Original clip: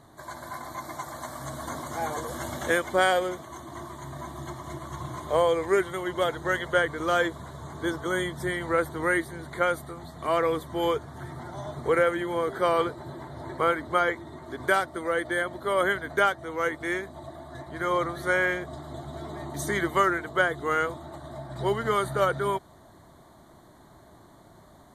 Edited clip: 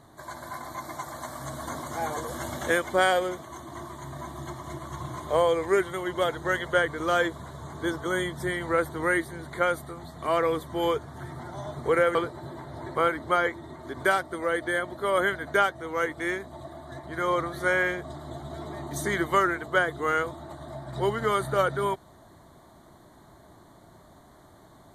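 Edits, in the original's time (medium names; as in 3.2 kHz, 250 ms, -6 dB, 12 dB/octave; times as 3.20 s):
12.15–12.78 s: delete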